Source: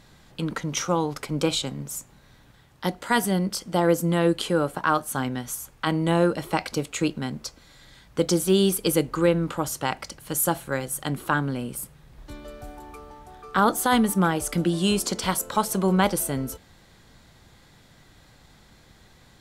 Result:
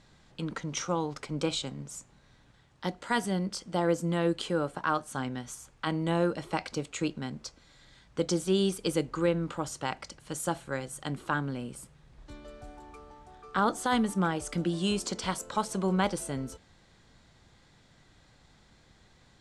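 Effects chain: low-pass 8.7 kHz 24 dB/octave; trim -6.5 dB

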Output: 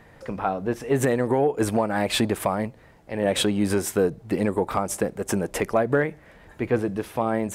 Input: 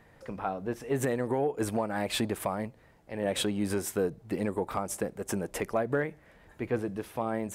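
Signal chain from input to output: treble shelf 11 kHz -4 dB; trim +7.5 dB

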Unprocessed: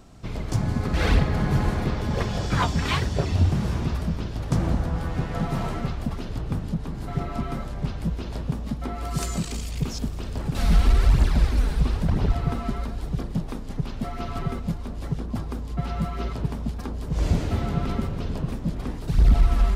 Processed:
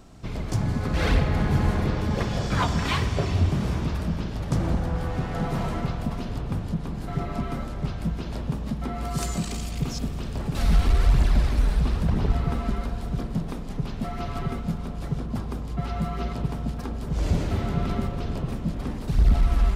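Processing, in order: in parallel at -9 dB: saturation -24.5 dBFS, distortion -6 dB; on the sum: spring tank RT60 3.3 s, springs 48 ms, chirp 65 ms, DRR 7.5 dB; trim -2.5 dB

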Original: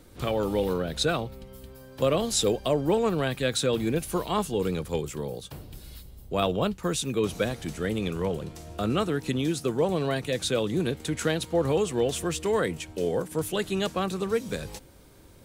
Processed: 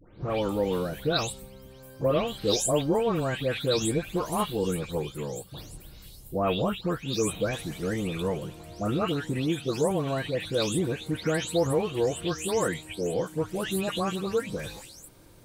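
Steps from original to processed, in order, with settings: delay that grows with frequency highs late, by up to 297 ms

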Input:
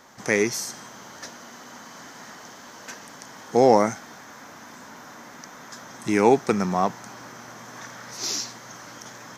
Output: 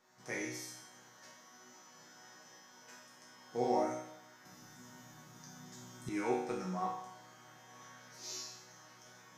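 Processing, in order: chord resonator B2 major, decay 0.77 s; 4.45–6.09 s: tone controls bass +15 dB, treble +7 dB; trim +3 dB

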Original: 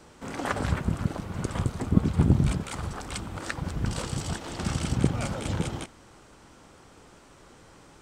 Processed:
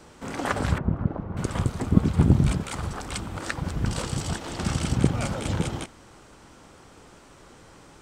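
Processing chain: 0.78–1.37 s: low-pass 1.1 kHz 12 dB/octave; trim +2.5 dB

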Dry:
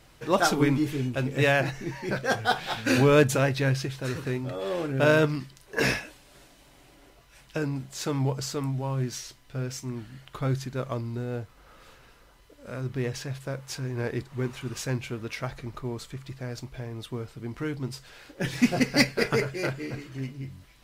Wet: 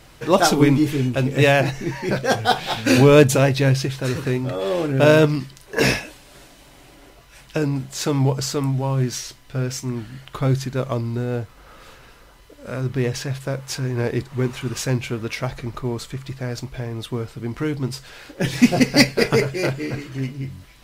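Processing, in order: dynamic bell 1.5 kHz, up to -5 dB, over -41 dBFS, Q 1.6; trim +8 dB

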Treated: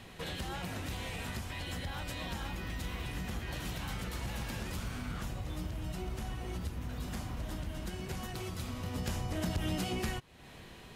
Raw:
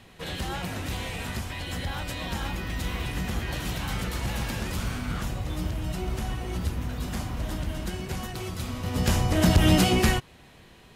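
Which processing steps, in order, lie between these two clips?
compression 2.5:1, threshold -41 dBFS, peak gain reduction 17.5 dB; trim +1 dB

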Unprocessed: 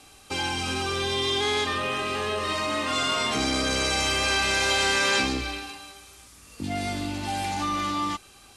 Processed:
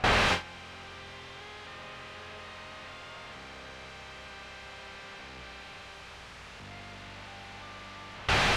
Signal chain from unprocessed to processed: spectral contrast reduction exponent 0.44; recorder AGC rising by 30 dB/s; in parallel at -12 dB: sine folder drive 18 dB, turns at -10.5 dBFS; on the sum: compression 16:1, threshold -25 dBFS, peak gain reduction 7.5 dB; on a send: echo that smears into a reverb 1034 ms, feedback 51%, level -13 dB; on the sum: dynamic bell 950 Hz, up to -5 dB, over -46 dBFS, Q 1.1; Schmitt trigger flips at -38 dBFS; low-pass 2.6 kHz 12 dB/octave; gate with hold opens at -26 dBFS; peaking EQ 300 Hz -10.5 dB 0.7 oct; trim +8.5 dB

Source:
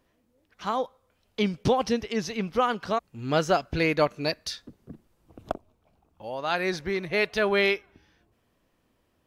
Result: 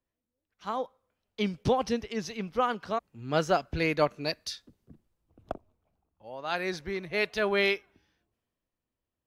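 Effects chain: three bands expanded up and down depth 40%; trim -4 dB

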